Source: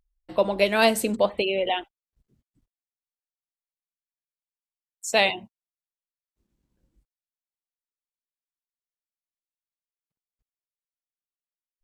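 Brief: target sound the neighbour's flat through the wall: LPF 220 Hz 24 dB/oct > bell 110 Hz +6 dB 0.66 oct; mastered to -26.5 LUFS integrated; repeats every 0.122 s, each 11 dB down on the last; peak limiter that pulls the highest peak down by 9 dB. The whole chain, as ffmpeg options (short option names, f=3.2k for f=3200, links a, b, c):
-af "alimiter=limit=-13dB:level=0:latency=1,lowpass=f=220:w=0.5412,lowpass=f=220:w=1.3066,equalizer=f=110:t=o:w=0.66:g=6,aecho=1:1:122|244|366:0.282|0.0789|0.0221,volume=11.5dB"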